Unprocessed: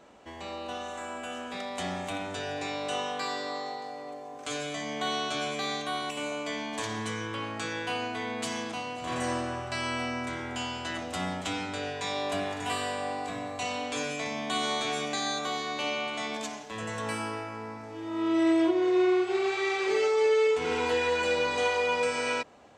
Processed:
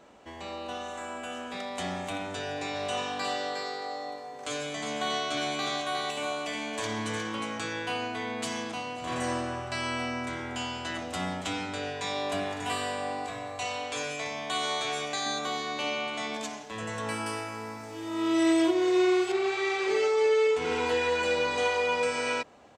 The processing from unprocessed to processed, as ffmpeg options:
ffmpeg -i in.wav -filter_complex "[0:a]asplit=3[link_01][link_02][link_03];[link_01]afade=type=out:start_time=2.74:duration=0.02[link_04];[link_02]aecho=1:1:360:0.562,afade=type=in:start_time=2.74:duration=0.02,afade=type=out:start_time=7.58:duration=0.02[link_05];[link_03]afade=type=in:start_time=7.58:duration=0.02[link_06];[link_04][link_05][link_06]amix=inputs=3:normalize=0,asettb=1/sr,asplit=3[link_07][link_08][link_09];[link_07]atrim=end=13.264[link_10];[link_08]atrim=start=13.26:end=15.26,asetpts=PTS-STARTPTS,afade=type=in:duration=0.004:curve=qsin,afade=type=out:start_time=1.996:duration=0.004:curve=qsin,equalizer=frequency=230:width_type=o:width=0.77:gain=-10.5[link_11];[link_09]atrim=start=15.256[link_12];[link_10][link_11]acrossfade=duration=0.004:curve1=hsin:curve2=qsin[link_13];[link_13][link_12]acrossfade=duration=0.004:curve1=qsin:curve2=hsin,asettb=1/sr,asplit=3[link_14][link_15][link_16];[link_14]atrim=end=17.264[link_17];[link_15]atrim=start=17.26:end=19.32,asetpts=PTS-STARTPTS,afade=type=in:duration=0.004:curve=qsin,afade=type=out:start_time=2.056:duration=0.004:curve=qsin,aemphasis=mode=production:type=75kf[link_18];[link_16]atrim=start=19.316[link_19];[link_17][link_18]acrossfade=duration=0.004:curve1=hsin:curve2=qsin[link_20];[link_20][link_19]acrossfade=duration=0.004:curve1=qsin:curve2=hsin" out.wav

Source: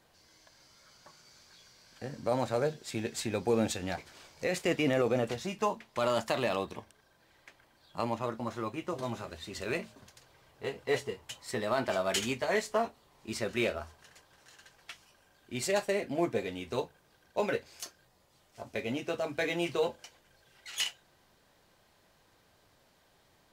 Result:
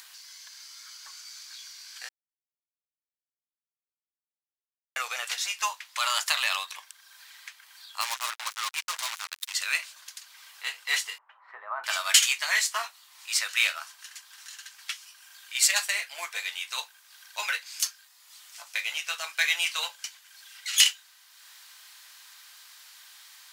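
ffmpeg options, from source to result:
ffmpeg -i in.wav -filter_complex "[0:a]asettb=1/sr,asplit=3[link_01][link_02][link_03];[link_01]atrim=end=8.014[link_04];[link_02]atrim=start=8.01:end=9.54,asetpts=PTS-STARTPTS,afade=type=in:duration=0.004:curve=qsin,afade=type=out:start_time=1.526:duration=0.004:curve=qsin,acrusher=bits=5:mix=0:aa=0.5[link_05];[link_03]atrim=start=9.536[link_06];[link_04][link_05]acrossfade=duration=0.004:curve1=hsin:curve2=qsin[link_07];[link_07][link_06]acrossfade=duration=0.004:curve1=qsin:curve2=hsin,asettb=1/sr,asplit=3[link_08][link_09][link_10];[link_08]atrim=end=11.184[link_11];[link_09]atrim=start=11.18:end=11.84,asetpts=PTS-STARTPTS,afade=type=in:duration=0.004:curve=qsin,afade=type=out:start_time=0.656:duration=0.004:curve=qsin,lowpass=frequency=1200:width=0.5412,lowpass=frequency=1200:width=1.3066[link_12];[link_10]atrim=start=11.836[link_13];[link_11][link_12]acrossfade=duration=0.004:curve1=hsin:curve2=qsin[link_14];[link_14][link_13]acrossfade=duration=0.004:curve1=qsin:curve2=hsin,asplit=3[link_15][link_16][link_17];[link_15]atrim=end=2.09,asetpts=PTS-STARTPTS,afade=type=out:start_time=2.086:duration=0.004:curve=hsin[link_18];[link_16]atrim=start=2.09:end=4.96,asetpts=PTS-STARTPTS,volume=0[link_19];[link_17]atrim=start=4.96,asetpts=PTS-STARTPTS,afade=type=in:duration=0.004:curve=hsin[link_20];[link_18][link_19][link_20]concat=n=3:v=0:a=1,highpass=frequency=1100:width=0.5412,highpass=frequency=1100:width=1.3066,highshelf=frequency=2300:gain=12,acompressor=mode=upward:threshold=-48dB:ratio=2.5,volume=5dB" out.wav

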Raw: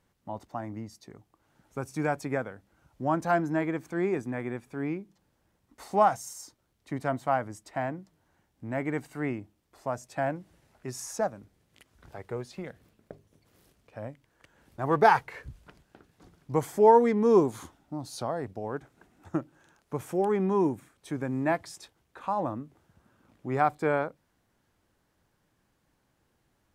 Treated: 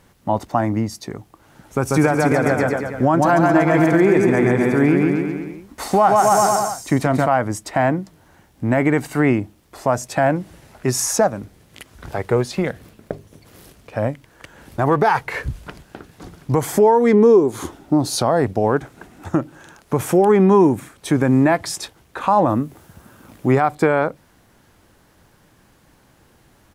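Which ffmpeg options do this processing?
ffmpeg -i in.wav -filter_complex "[0:a]asplit=3[link_01][link_02][link_03];[link_01]afade=type=out:start_time=1.85:duration=0.02[link_04];[link_02]aecho=1:1:140|266|379.4|481.5|573.3|656:0.631|0.398|0.251|0.158|0.1|0.0631,afade=type=in:start_time=1.85:duration=0.02,afade=type=out:start_time=7.25:duration=0.02[link_05];[link_03]afade=type=in:start_time=7.25:duration=0.02[link_06];[link_04][link_05][link_06]amix=inputs=3:normalize=0,asettb=1/sr,asplit=3[link_07][link_08][link_09];[link_07]atrim=end=17.134[link_10];[link_08]atrim=start=17.13:end=18.15,asetpts=PTS-STARTPTS,afade=type=in:duration=0.004:curve=qsin,afade=type=out:start_time=1.016:duration=0.004:curve=qsin,equalizer=frequency=380:width_type=o:width=0.77:gain=8.5[link_11];[link_09]atrim=start=18.146[link_12];[link_10][link_11]acrossfade=duration=0.004:curve1=hsin:curve2=qsin[link_13];[link_13][link_12]acrossfade=duration=0.004:curve1=qsin:curve2=hsin,asettb=1/sr,asplit=3[link_14][link_15][link_16];[link_14]atrim=end=22.494[link_17];[link_15]atrim=start=22.49:end=23.52,asetpts=PTS-STARTPTS,afade=type=in:duration=0.004:curve=qsin,afade=type=out:start_time=1.026:duration=0.004:curve=qsin,highshelf=frequency=8100:gain=10.5[link_18];[link_16]atrim=start=23.516[link_19];[link_17][link_18]acrossfade=duration=0.004:curve1=hsin:curve2=qsin[link_20];[link_20][link_19]acrossfade=duration=0.004:curve1=qsin:curve2=hsin,equalizer=frequency=11000:width_type=o:width=0.23:gain=2.5,acompressor=threshold=-27dB:ratio=6,alimiter=level_in=22.5dB:limit=-1dB:release=50:level=0:latency=1,volume=-4.5dB" out.wav

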